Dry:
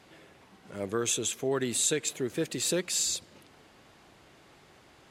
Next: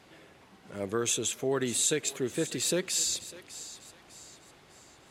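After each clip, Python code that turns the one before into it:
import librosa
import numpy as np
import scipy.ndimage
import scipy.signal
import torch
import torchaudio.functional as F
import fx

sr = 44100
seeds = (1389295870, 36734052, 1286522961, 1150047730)

y = fx.echo_thinned(x, sr, ms=601, feedback_pct=42, hz=810.0, wet_db=-14.5)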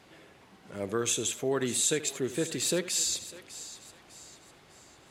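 y = x + 10.0 ** (-15.5 / 20.0) * np.pad(x, (int(78 * sr / 1000.0), 0))[:len(x)]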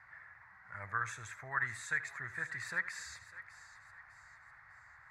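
y = fx.curve_eq(x, sr, hz=(110.0, 250.0, 420.0, 920.0, 1900.0, 3000.0, 4300.0, 13000.0), db=(0, -25, -25, 2, 14, -24, -14, -22))
y = F.gain(torch.from_numpy(y), -4.5).numpy()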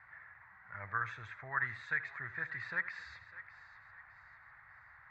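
y = scipy.signal.sosfilt(scipy.signal.butter(4, 3800.0, 'lowpass', fs=sr, output='sos'), x)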